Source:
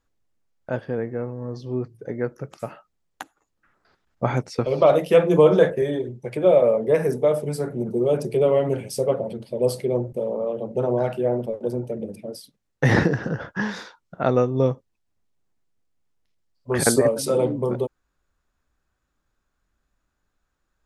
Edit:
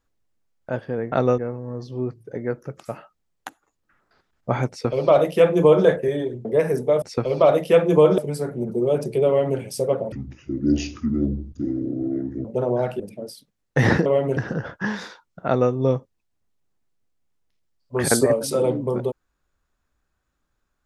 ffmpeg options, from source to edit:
-filter_complex "[0:a]asplit=11[a][b][c][d][e][f][g][h][i][j][k];[a]atrim=end=1.122[l];[b]atrim=start=14.208:end=14.472[m];[c]atrim=start=1.118:end=6.192[n];[d]atrim=start=6.798:end=7.372[o];[e]atrim=start=4.428:end=5.592[p];[f]atrim=start=7.368:end=9.314[q];[g]atrim=start=9.31:end=10.66,asetpts=PTS-STARTPTS,asetrate=25578,aresample=44100[r];[h]atrim=start=10.656:end=11.212[s];[i]atrim=start=12.058:end=13.122[t];[j]atrim=start=8.468:end=8.782[u];[k]atrim=start=13.118[v];[l][m]acrossfade=d=0.004:c1=hsin:c2=hsin[w];[w][n]acrossfade=d=0.004:c1=hsin:c2=hsin[x];[x][o]acrossfade=d=0.004:c1=hsin:c2=hsin[y];[y][p]acrossfade=d=0.004:c1=hsin:c2=hsin[z];[z][q]acrossfade=d=0.004:c1=hsin:c2=hsin[aa];[aa][r]acrossfade=d=0.004:c1=hsin:c2=hsin[ab];[ab][s]acrossfade=d=0.004:c1=hsin:c2=hsin[ac];[ac][t]acrossfade=d=0.004:c1=hsin:c2=hsin[ad];[ad][u]acrossfade=d=0.004:c1=hsin:c2=hsin[ae];[ae][v]acrossfade=d=0.004:c1=hsin:c2=hsin"

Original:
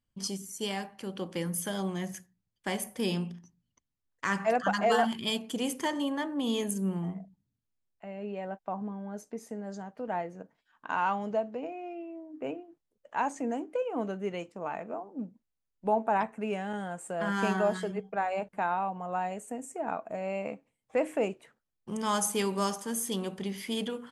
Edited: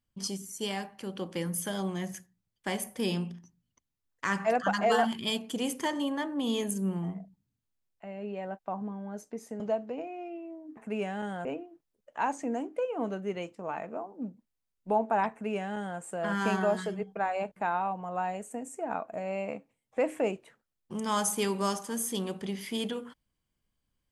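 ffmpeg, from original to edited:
-filter_complex "[0:a]asplit=4[a][b][c][d];[a]atrim=end=9.602[e];[b]atrim=start=11.248:end=12.422[f];[c]atrim=start=16.278:end=16.962[g];[d]atrim=start=12.418[h];[e][f]acrossfade=d=0.004:c1=hsin:c2=hsin[i];[i][g]acrossfade=d=0.004:c1=hsin:c2=hsin[j];[j][h]acrossfade=d=0.004:c1=hsin:c2=hsin"

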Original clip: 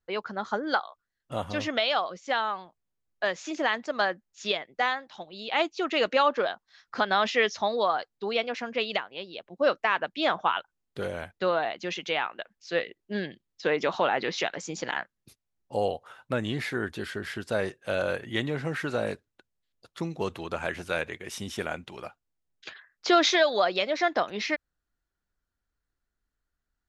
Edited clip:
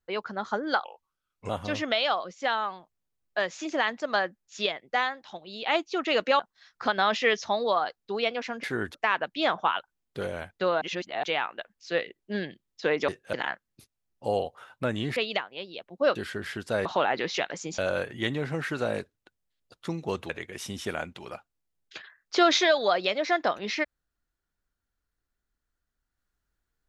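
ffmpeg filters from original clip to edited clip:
-filter_complex "[0:a]asplit=15[a][b][c][d][e][f][g][h][i][j][k][l][m][n][o];[a]atrim=end=0.844[p];[b]atrim=start=0.84:end=1.35,asetpts=PTS-STARTPTS,asetrate=34398,aresample=44100[q];[c]atrim=start=1.346:end=6.252[r];[d]atrim=start=6.518:end=8.762[s];[e]atrim=start=16.648:end=16.962[t];[f]atrim=start=9.748:end=11.622[u];[g]atrim=start=11.618:end=12.042,asetpts=PTS-STARTPTS,areverse[v];[h]atrim=start=12.038:end=13.892[w];[i]atrim=start=17.658:end=17.912[x];[j]atrim=start=14.818:end=16.652[y];[k]atrim=start=8.758:end=9.752[z];[l]atrim=start=16.958:end=17.662[aa];[m]atrim=start=13.888:end=14.822[ab];[n]atrim=start=17.908:end=20.422[ac];[o]atrim=start=21.008[ad];[p][q]acrossfade=d=0.004:c1=hsin:c2=hsin[ae];[ae][r]acrossfade=d=0.004:c1=hsin:c2=hsin[af];[af][s]acrossfade=d=0.004:c1=hsin:c2=hsin[ag];[ag][t]acrossfade=d=0.004:c1=hsin:c2=hsin[ah];[ah][u]acrossfade=d=0.004:c1=hsin:c2=hsin[ai];[ai][v]acrossfade=d=0.004:c1=hsin:c2=hsin[aj];[aj][w]acrossfade=d=0.004:c1=hsin:c2=hsin[ak];[ak][x]acrossfade=d=0.004:c1=hsin:c2=hsin[al];[al][y]acrossfade=d=0.004:c1=hsin:c2=hsin[am];[am][z]acrossfade=d=0.004:c1=hsin:c2=hsin[an];[an][aa]acrossfade=d=0.004:c1=hsin:c2=hsin[ao];[ao][ab]acrossfade=d=0.004:c1=hsin:c2=hsin[ap];[ap][ac]acrossfade=d=0.004:c1=hsin:c2=hsin[aq];[aq][ad]acrossfade=d=0.004:c1=hsin:c2=hsin"

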